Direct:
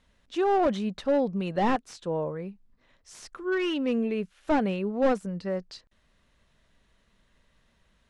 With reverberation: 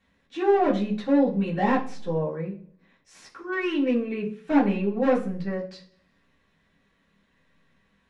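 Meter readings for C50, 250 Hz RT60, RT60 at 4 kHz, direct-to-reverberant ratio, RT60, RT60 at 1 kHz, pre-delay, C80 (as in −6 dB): 10.5 dB, 0.70 s, 0.55 s, −9.5 dB, 0.45 s, 0.40 s, 3 ms, 15.5 dB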